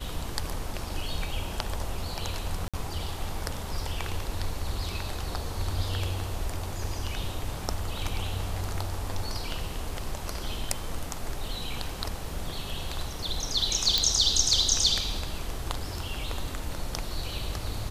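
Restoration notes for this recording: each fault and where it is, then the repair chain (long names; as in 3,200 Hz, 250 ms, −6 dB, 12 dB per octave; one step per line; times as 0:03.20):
0:02.68–0:02.74: drop-out 56 ms
0:13.98: click −7 dBFS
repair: click removal
repair the gap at 0:02.68, 56 ms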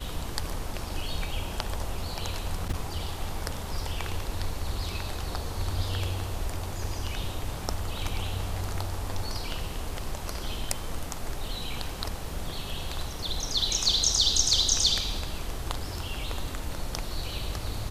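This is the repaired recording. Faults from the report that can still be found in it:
none of them is left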